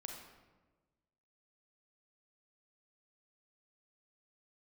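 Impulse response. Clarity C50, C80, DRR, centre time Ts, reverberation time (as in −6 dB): 2.5 dB, 5.5 dB, 1.0 dB, 48 ms, 1.3 s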